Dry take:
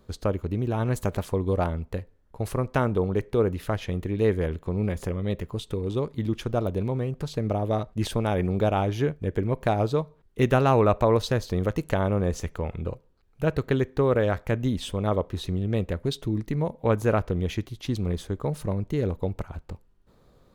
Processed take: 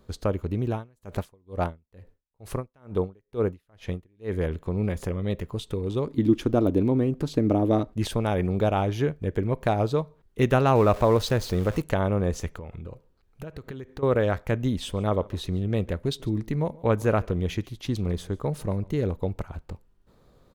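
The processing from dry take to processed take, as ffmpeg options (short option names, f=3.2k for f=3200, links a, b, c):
-filter_complex "[0:a]asettb=1/sr,asplit=3[a][b][c];[a]atrim=end=0.724[d];[b]atrim=start=0.72:end=4.37,asetpts=PTS-STARTPTS,afade=t=in:d=0.004:c=qsin,afade=t=out:st=3.646:d=0.004:c=qsin,aeval=exprs='val(0)*pow(10,-37*(0.5-0.5*cos(2*PI*2.2*n/s))/20)':c=same[e];[c]atrim=start=4.366[f];[d][e]acrossfade=d=0.004:c1=hsin:c2=qsin[g];[g][f]acrossfade=d=0.004:c1=qsin:c2=hsin,asettb=1/sr,asplit=3[h][i][j];[h]atrim=end=6.074[k];[i]atrim=start=6.07:end=7.95,asetpts=PTS-STARTPTS,afade=t=in:d=0.004:c=qsin,afade=t=out:st=1.876:d=0.004:c=qsin,equalizer=f=290:w=2.2:g=14.5[l];[j]atrim=start=7.946[m];[k][l]acrossfade=d=0.004:c1=hsin:c2=qsin[n];[n][m]acrossfade=d=0.004:c1=qsin:c2=hsin,asettb=1/sr,asplit=3[o][p][q];[o]atrim=end=10.754[r];[p]atrim=start=10.75:end=11.82,asetpts=PTS-STARTPTS,afade=t=in:d=0.004:c=qsin,afade=t=out:st=1.066:d=0.004:c=qsin,aeval=exprs='val(0)+0.5*0.0168*sgn(val(0))':c=same[s];[q]atrim=start=11.816[t];[r][s]acrossfade=d=0.004:c1=hsin:c2=qsin[u];[u][t]acrossfade=d=0.004:c1=qsin:c2=hsin,asettb=1/sr,asplit=3[v][w][x];[v]atrim=end=12.564[y];[w]atrim=start=12.56:end=14.03,asetpts=PTS-STARTPTS,afade=t=in:d=0.004:c=qsin,afade=t=out:st=1.466:d=0.004:c=qsin,acompressor=threshold=-33dB:ratio=12:attack=3.2:release=140:knee=1:detection=peak[z];[x]atrim=start=14.026[aa];[y][z]acrossfade=d=0.004:c1=hsin:c2=qsin[ab];[ab][aa]acrossfade=d=0.004:c1=qsin:c2=hsin,asplit=3[ac][ad][ae];[ac]afade=t=out:st=14.9:d=0.02[af];[ad]aecho=1:1:145:0.0668,afade=t=in:st=14.9:d=0.02,afade=t=out:st=19.01:d=0.02[ag];[ae]afade=t=in:st=19.01:d=0.02[ah];[af][ag][ah]amix=inputs=3:normalize=0"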